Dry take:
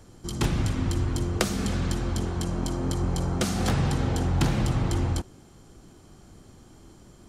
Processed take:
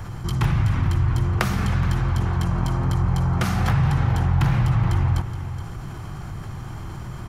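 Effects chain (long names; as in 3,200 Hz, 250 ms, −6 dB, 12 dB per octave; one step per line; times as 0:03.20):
octave-band graphic EQ 125/250/500/1,000/2,000/4,000/8,000 Hz +9/−9/−7/+5/+3/−5/−11 dB
on a send: single-tap delay 422 ms −21 dB
on the sum: envelope flattener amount 50%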